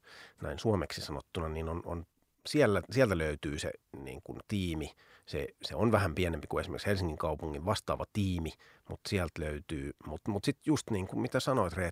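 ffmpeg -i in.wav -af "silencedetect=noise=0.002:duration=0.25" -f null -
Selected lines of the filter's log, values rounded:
silence_start: 2.04
silence_end: 2.45 | silence_duration: 0.41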